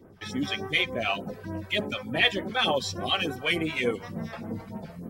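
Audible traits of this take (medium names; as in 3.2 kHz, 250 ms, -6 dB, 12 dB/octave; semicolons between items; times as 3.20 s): phasing stages 2, 3.4 Hz, lowest notch 210–4400 Hz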